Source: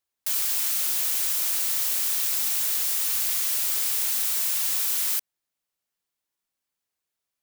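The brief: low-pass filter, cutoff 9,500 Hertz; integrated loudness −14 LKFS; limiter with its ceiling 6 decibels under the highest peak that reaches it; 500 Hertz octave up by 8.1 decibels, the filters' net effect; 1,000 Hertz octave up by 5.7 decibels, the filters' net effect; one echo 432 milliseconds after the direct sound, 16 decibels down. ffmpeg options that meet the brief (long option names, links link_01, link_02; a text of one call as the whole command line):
ffmpeg -i in.wav -af "lowpass=9500,equalizer=frequency=500:width_type=o:gain=8.5,equalizer=frequency=1000:width_type=o:gain=5,alimiter=level_in=0.5dB:limit=-24dB:level=0:latency=1,volume=-0.5dB,aecho=1:1:432:0.158,volume=17.5dB" out.wav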